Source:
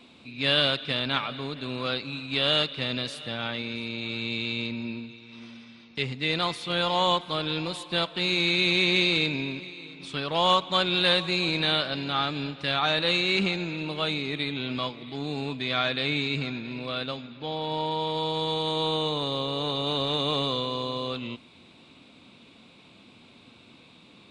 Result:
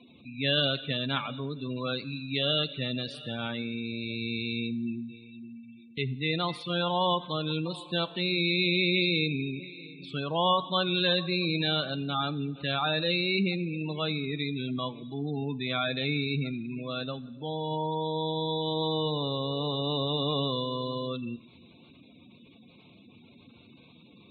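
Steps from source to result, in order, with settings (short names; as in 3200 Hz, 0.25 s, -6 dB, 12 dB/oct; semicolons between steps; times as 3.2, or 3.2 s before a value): spectral gate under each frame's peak -15 dB strong; low shelf 330 Hz +6 dB; two-slope reverb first 0.96 s, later 2.9 s, from -22 dB, DRR 17 dB; gain -3.5 dB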